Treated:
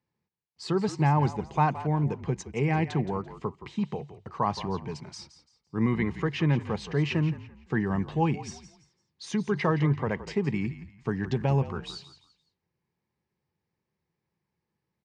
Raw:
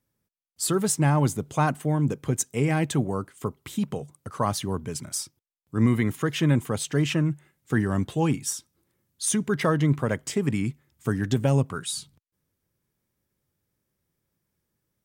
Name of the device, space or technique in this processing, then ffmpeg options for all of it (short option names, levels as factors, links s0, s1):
frequency-shifting delay pedal into a guitar cabinet: -filter_complex "[0:a]asplit=4[s0][s1][s2][s3];[s1]adelay=170,afreqshift=-46,volume=0.211[s4];[s2]adelay=340,afreqshift=-92,volume=0.0653[s5];[s3]adelay=510,afreqshift=-138,volume=0.0204[s6];[s0][s4][s5][s6]amix=inputs=4:normalize=0,highpass=95,equalizer=f=110:t=q:w=4:g=-6,equalizer=f=270:t=q:w=4:g=-9,equalizer=f=580:t=q:w=4:g=-7,equalizer=f=880:t=q:w=4:g=5,equalizer=f=1400:t=q:w=4:g=-8,equalizer=f=3400:t=q:w=4:g=-9,lowpass=f=4400:w=0.5412,lowpass=f=4400:w=1.3066"